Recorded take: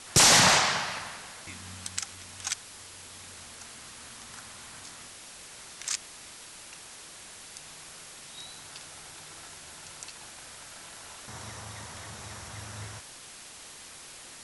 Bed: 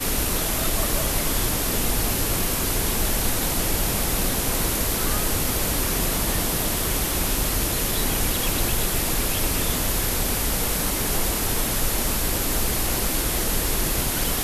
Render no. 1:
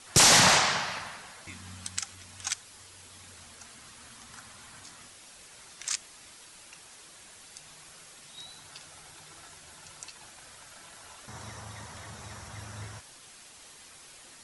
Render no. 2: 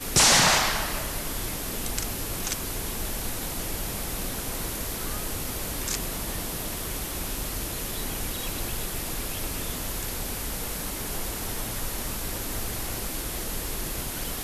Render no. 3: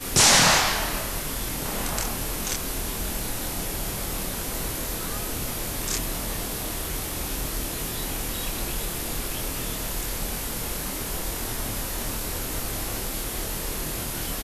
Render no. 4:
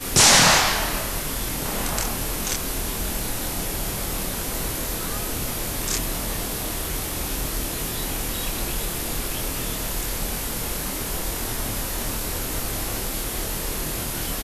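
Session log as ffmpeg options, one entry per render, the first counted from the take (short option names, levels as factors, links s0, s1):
-af "afftdn=nr=6:nf=-47"
-filter_complex "[1:a]volume=0.376[s0];[0:a][s0]amix=inputs=2:normalize=0"
-filter_complex "[0:a]asplit=2[s0][s1];[s1]adelay=26,volume=0.708[s2];[s0][s2]amix=inputs=2:normalize=0,asplit=2[s3][s4];[s4]adelay=1458,volume=0.282,highshelf=f=4000:g=-32.8[s5];[s3][s5]amix=inputs=2:normalize=0"
-af "volume=1.33"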